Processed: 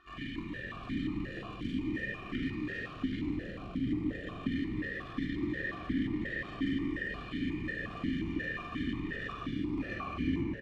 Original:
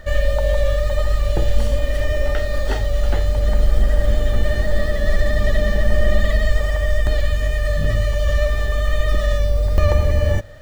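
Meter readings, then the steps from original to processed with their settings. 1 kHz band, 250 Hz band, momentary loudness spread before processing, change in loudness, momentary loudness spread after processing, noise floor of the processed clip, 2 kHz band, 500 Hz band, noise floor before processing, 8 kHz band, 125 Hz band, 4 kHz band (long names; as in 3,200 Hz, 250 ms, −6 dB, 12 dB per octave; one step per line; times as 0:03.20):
−13.0 dB, 0.0 dB, 3 LU, −16.0 dB, 5 LU, −45 dBFS, −11.0 dB, −23.0 dB, −22 dBFS, can't be measured, −20.5 dB, −15.0 dB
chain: sub-octave generator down 1 octave, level −3 dB
brick-wall band-stop 400–970 Hz
square-wave tremolo 6.2 Hz, depth 65%, duty 85%
soft clipping −19 dBFS, distortion −8 dB
double-tracking delay 40 ms −12 dB
on a send: echo with shifted repeats 142 ms, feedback 62%, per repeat −71 Hz, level −8 dB
on the sum: rectangular room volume 1,500 cubic metres, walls mixed, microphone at 3.2 metres
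formant filter that steps through the vowels 5.6 Hz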